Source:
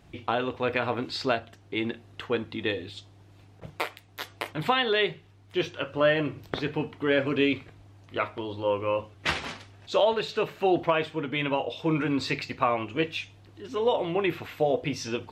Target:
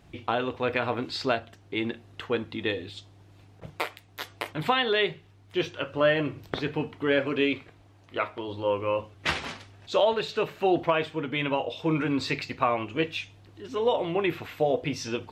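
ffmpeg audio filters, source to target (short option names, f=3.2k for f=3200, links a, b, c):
-filter_complex "[0:a]asettb=1/sr,asplit=3[a][b][c];[a]atrim=end=7.194[d];[b]atrim=start=7.19:end=8.48,asetpts=PTS-STARTPTS,afade=t=in:d=0.004:c=qsin,afade=t=out:st=1.286:d=0.004:c=qsin,bass=f=250:g=-5,treble=f=4k:g=-2[e];[c]atrim=start=8.476[f];[d][e]acrossfade=d=0.004:c1=hsin:c2=qsin[g];[g][f]acrossfade=d=0.004:c1=qsin:c2=hsin"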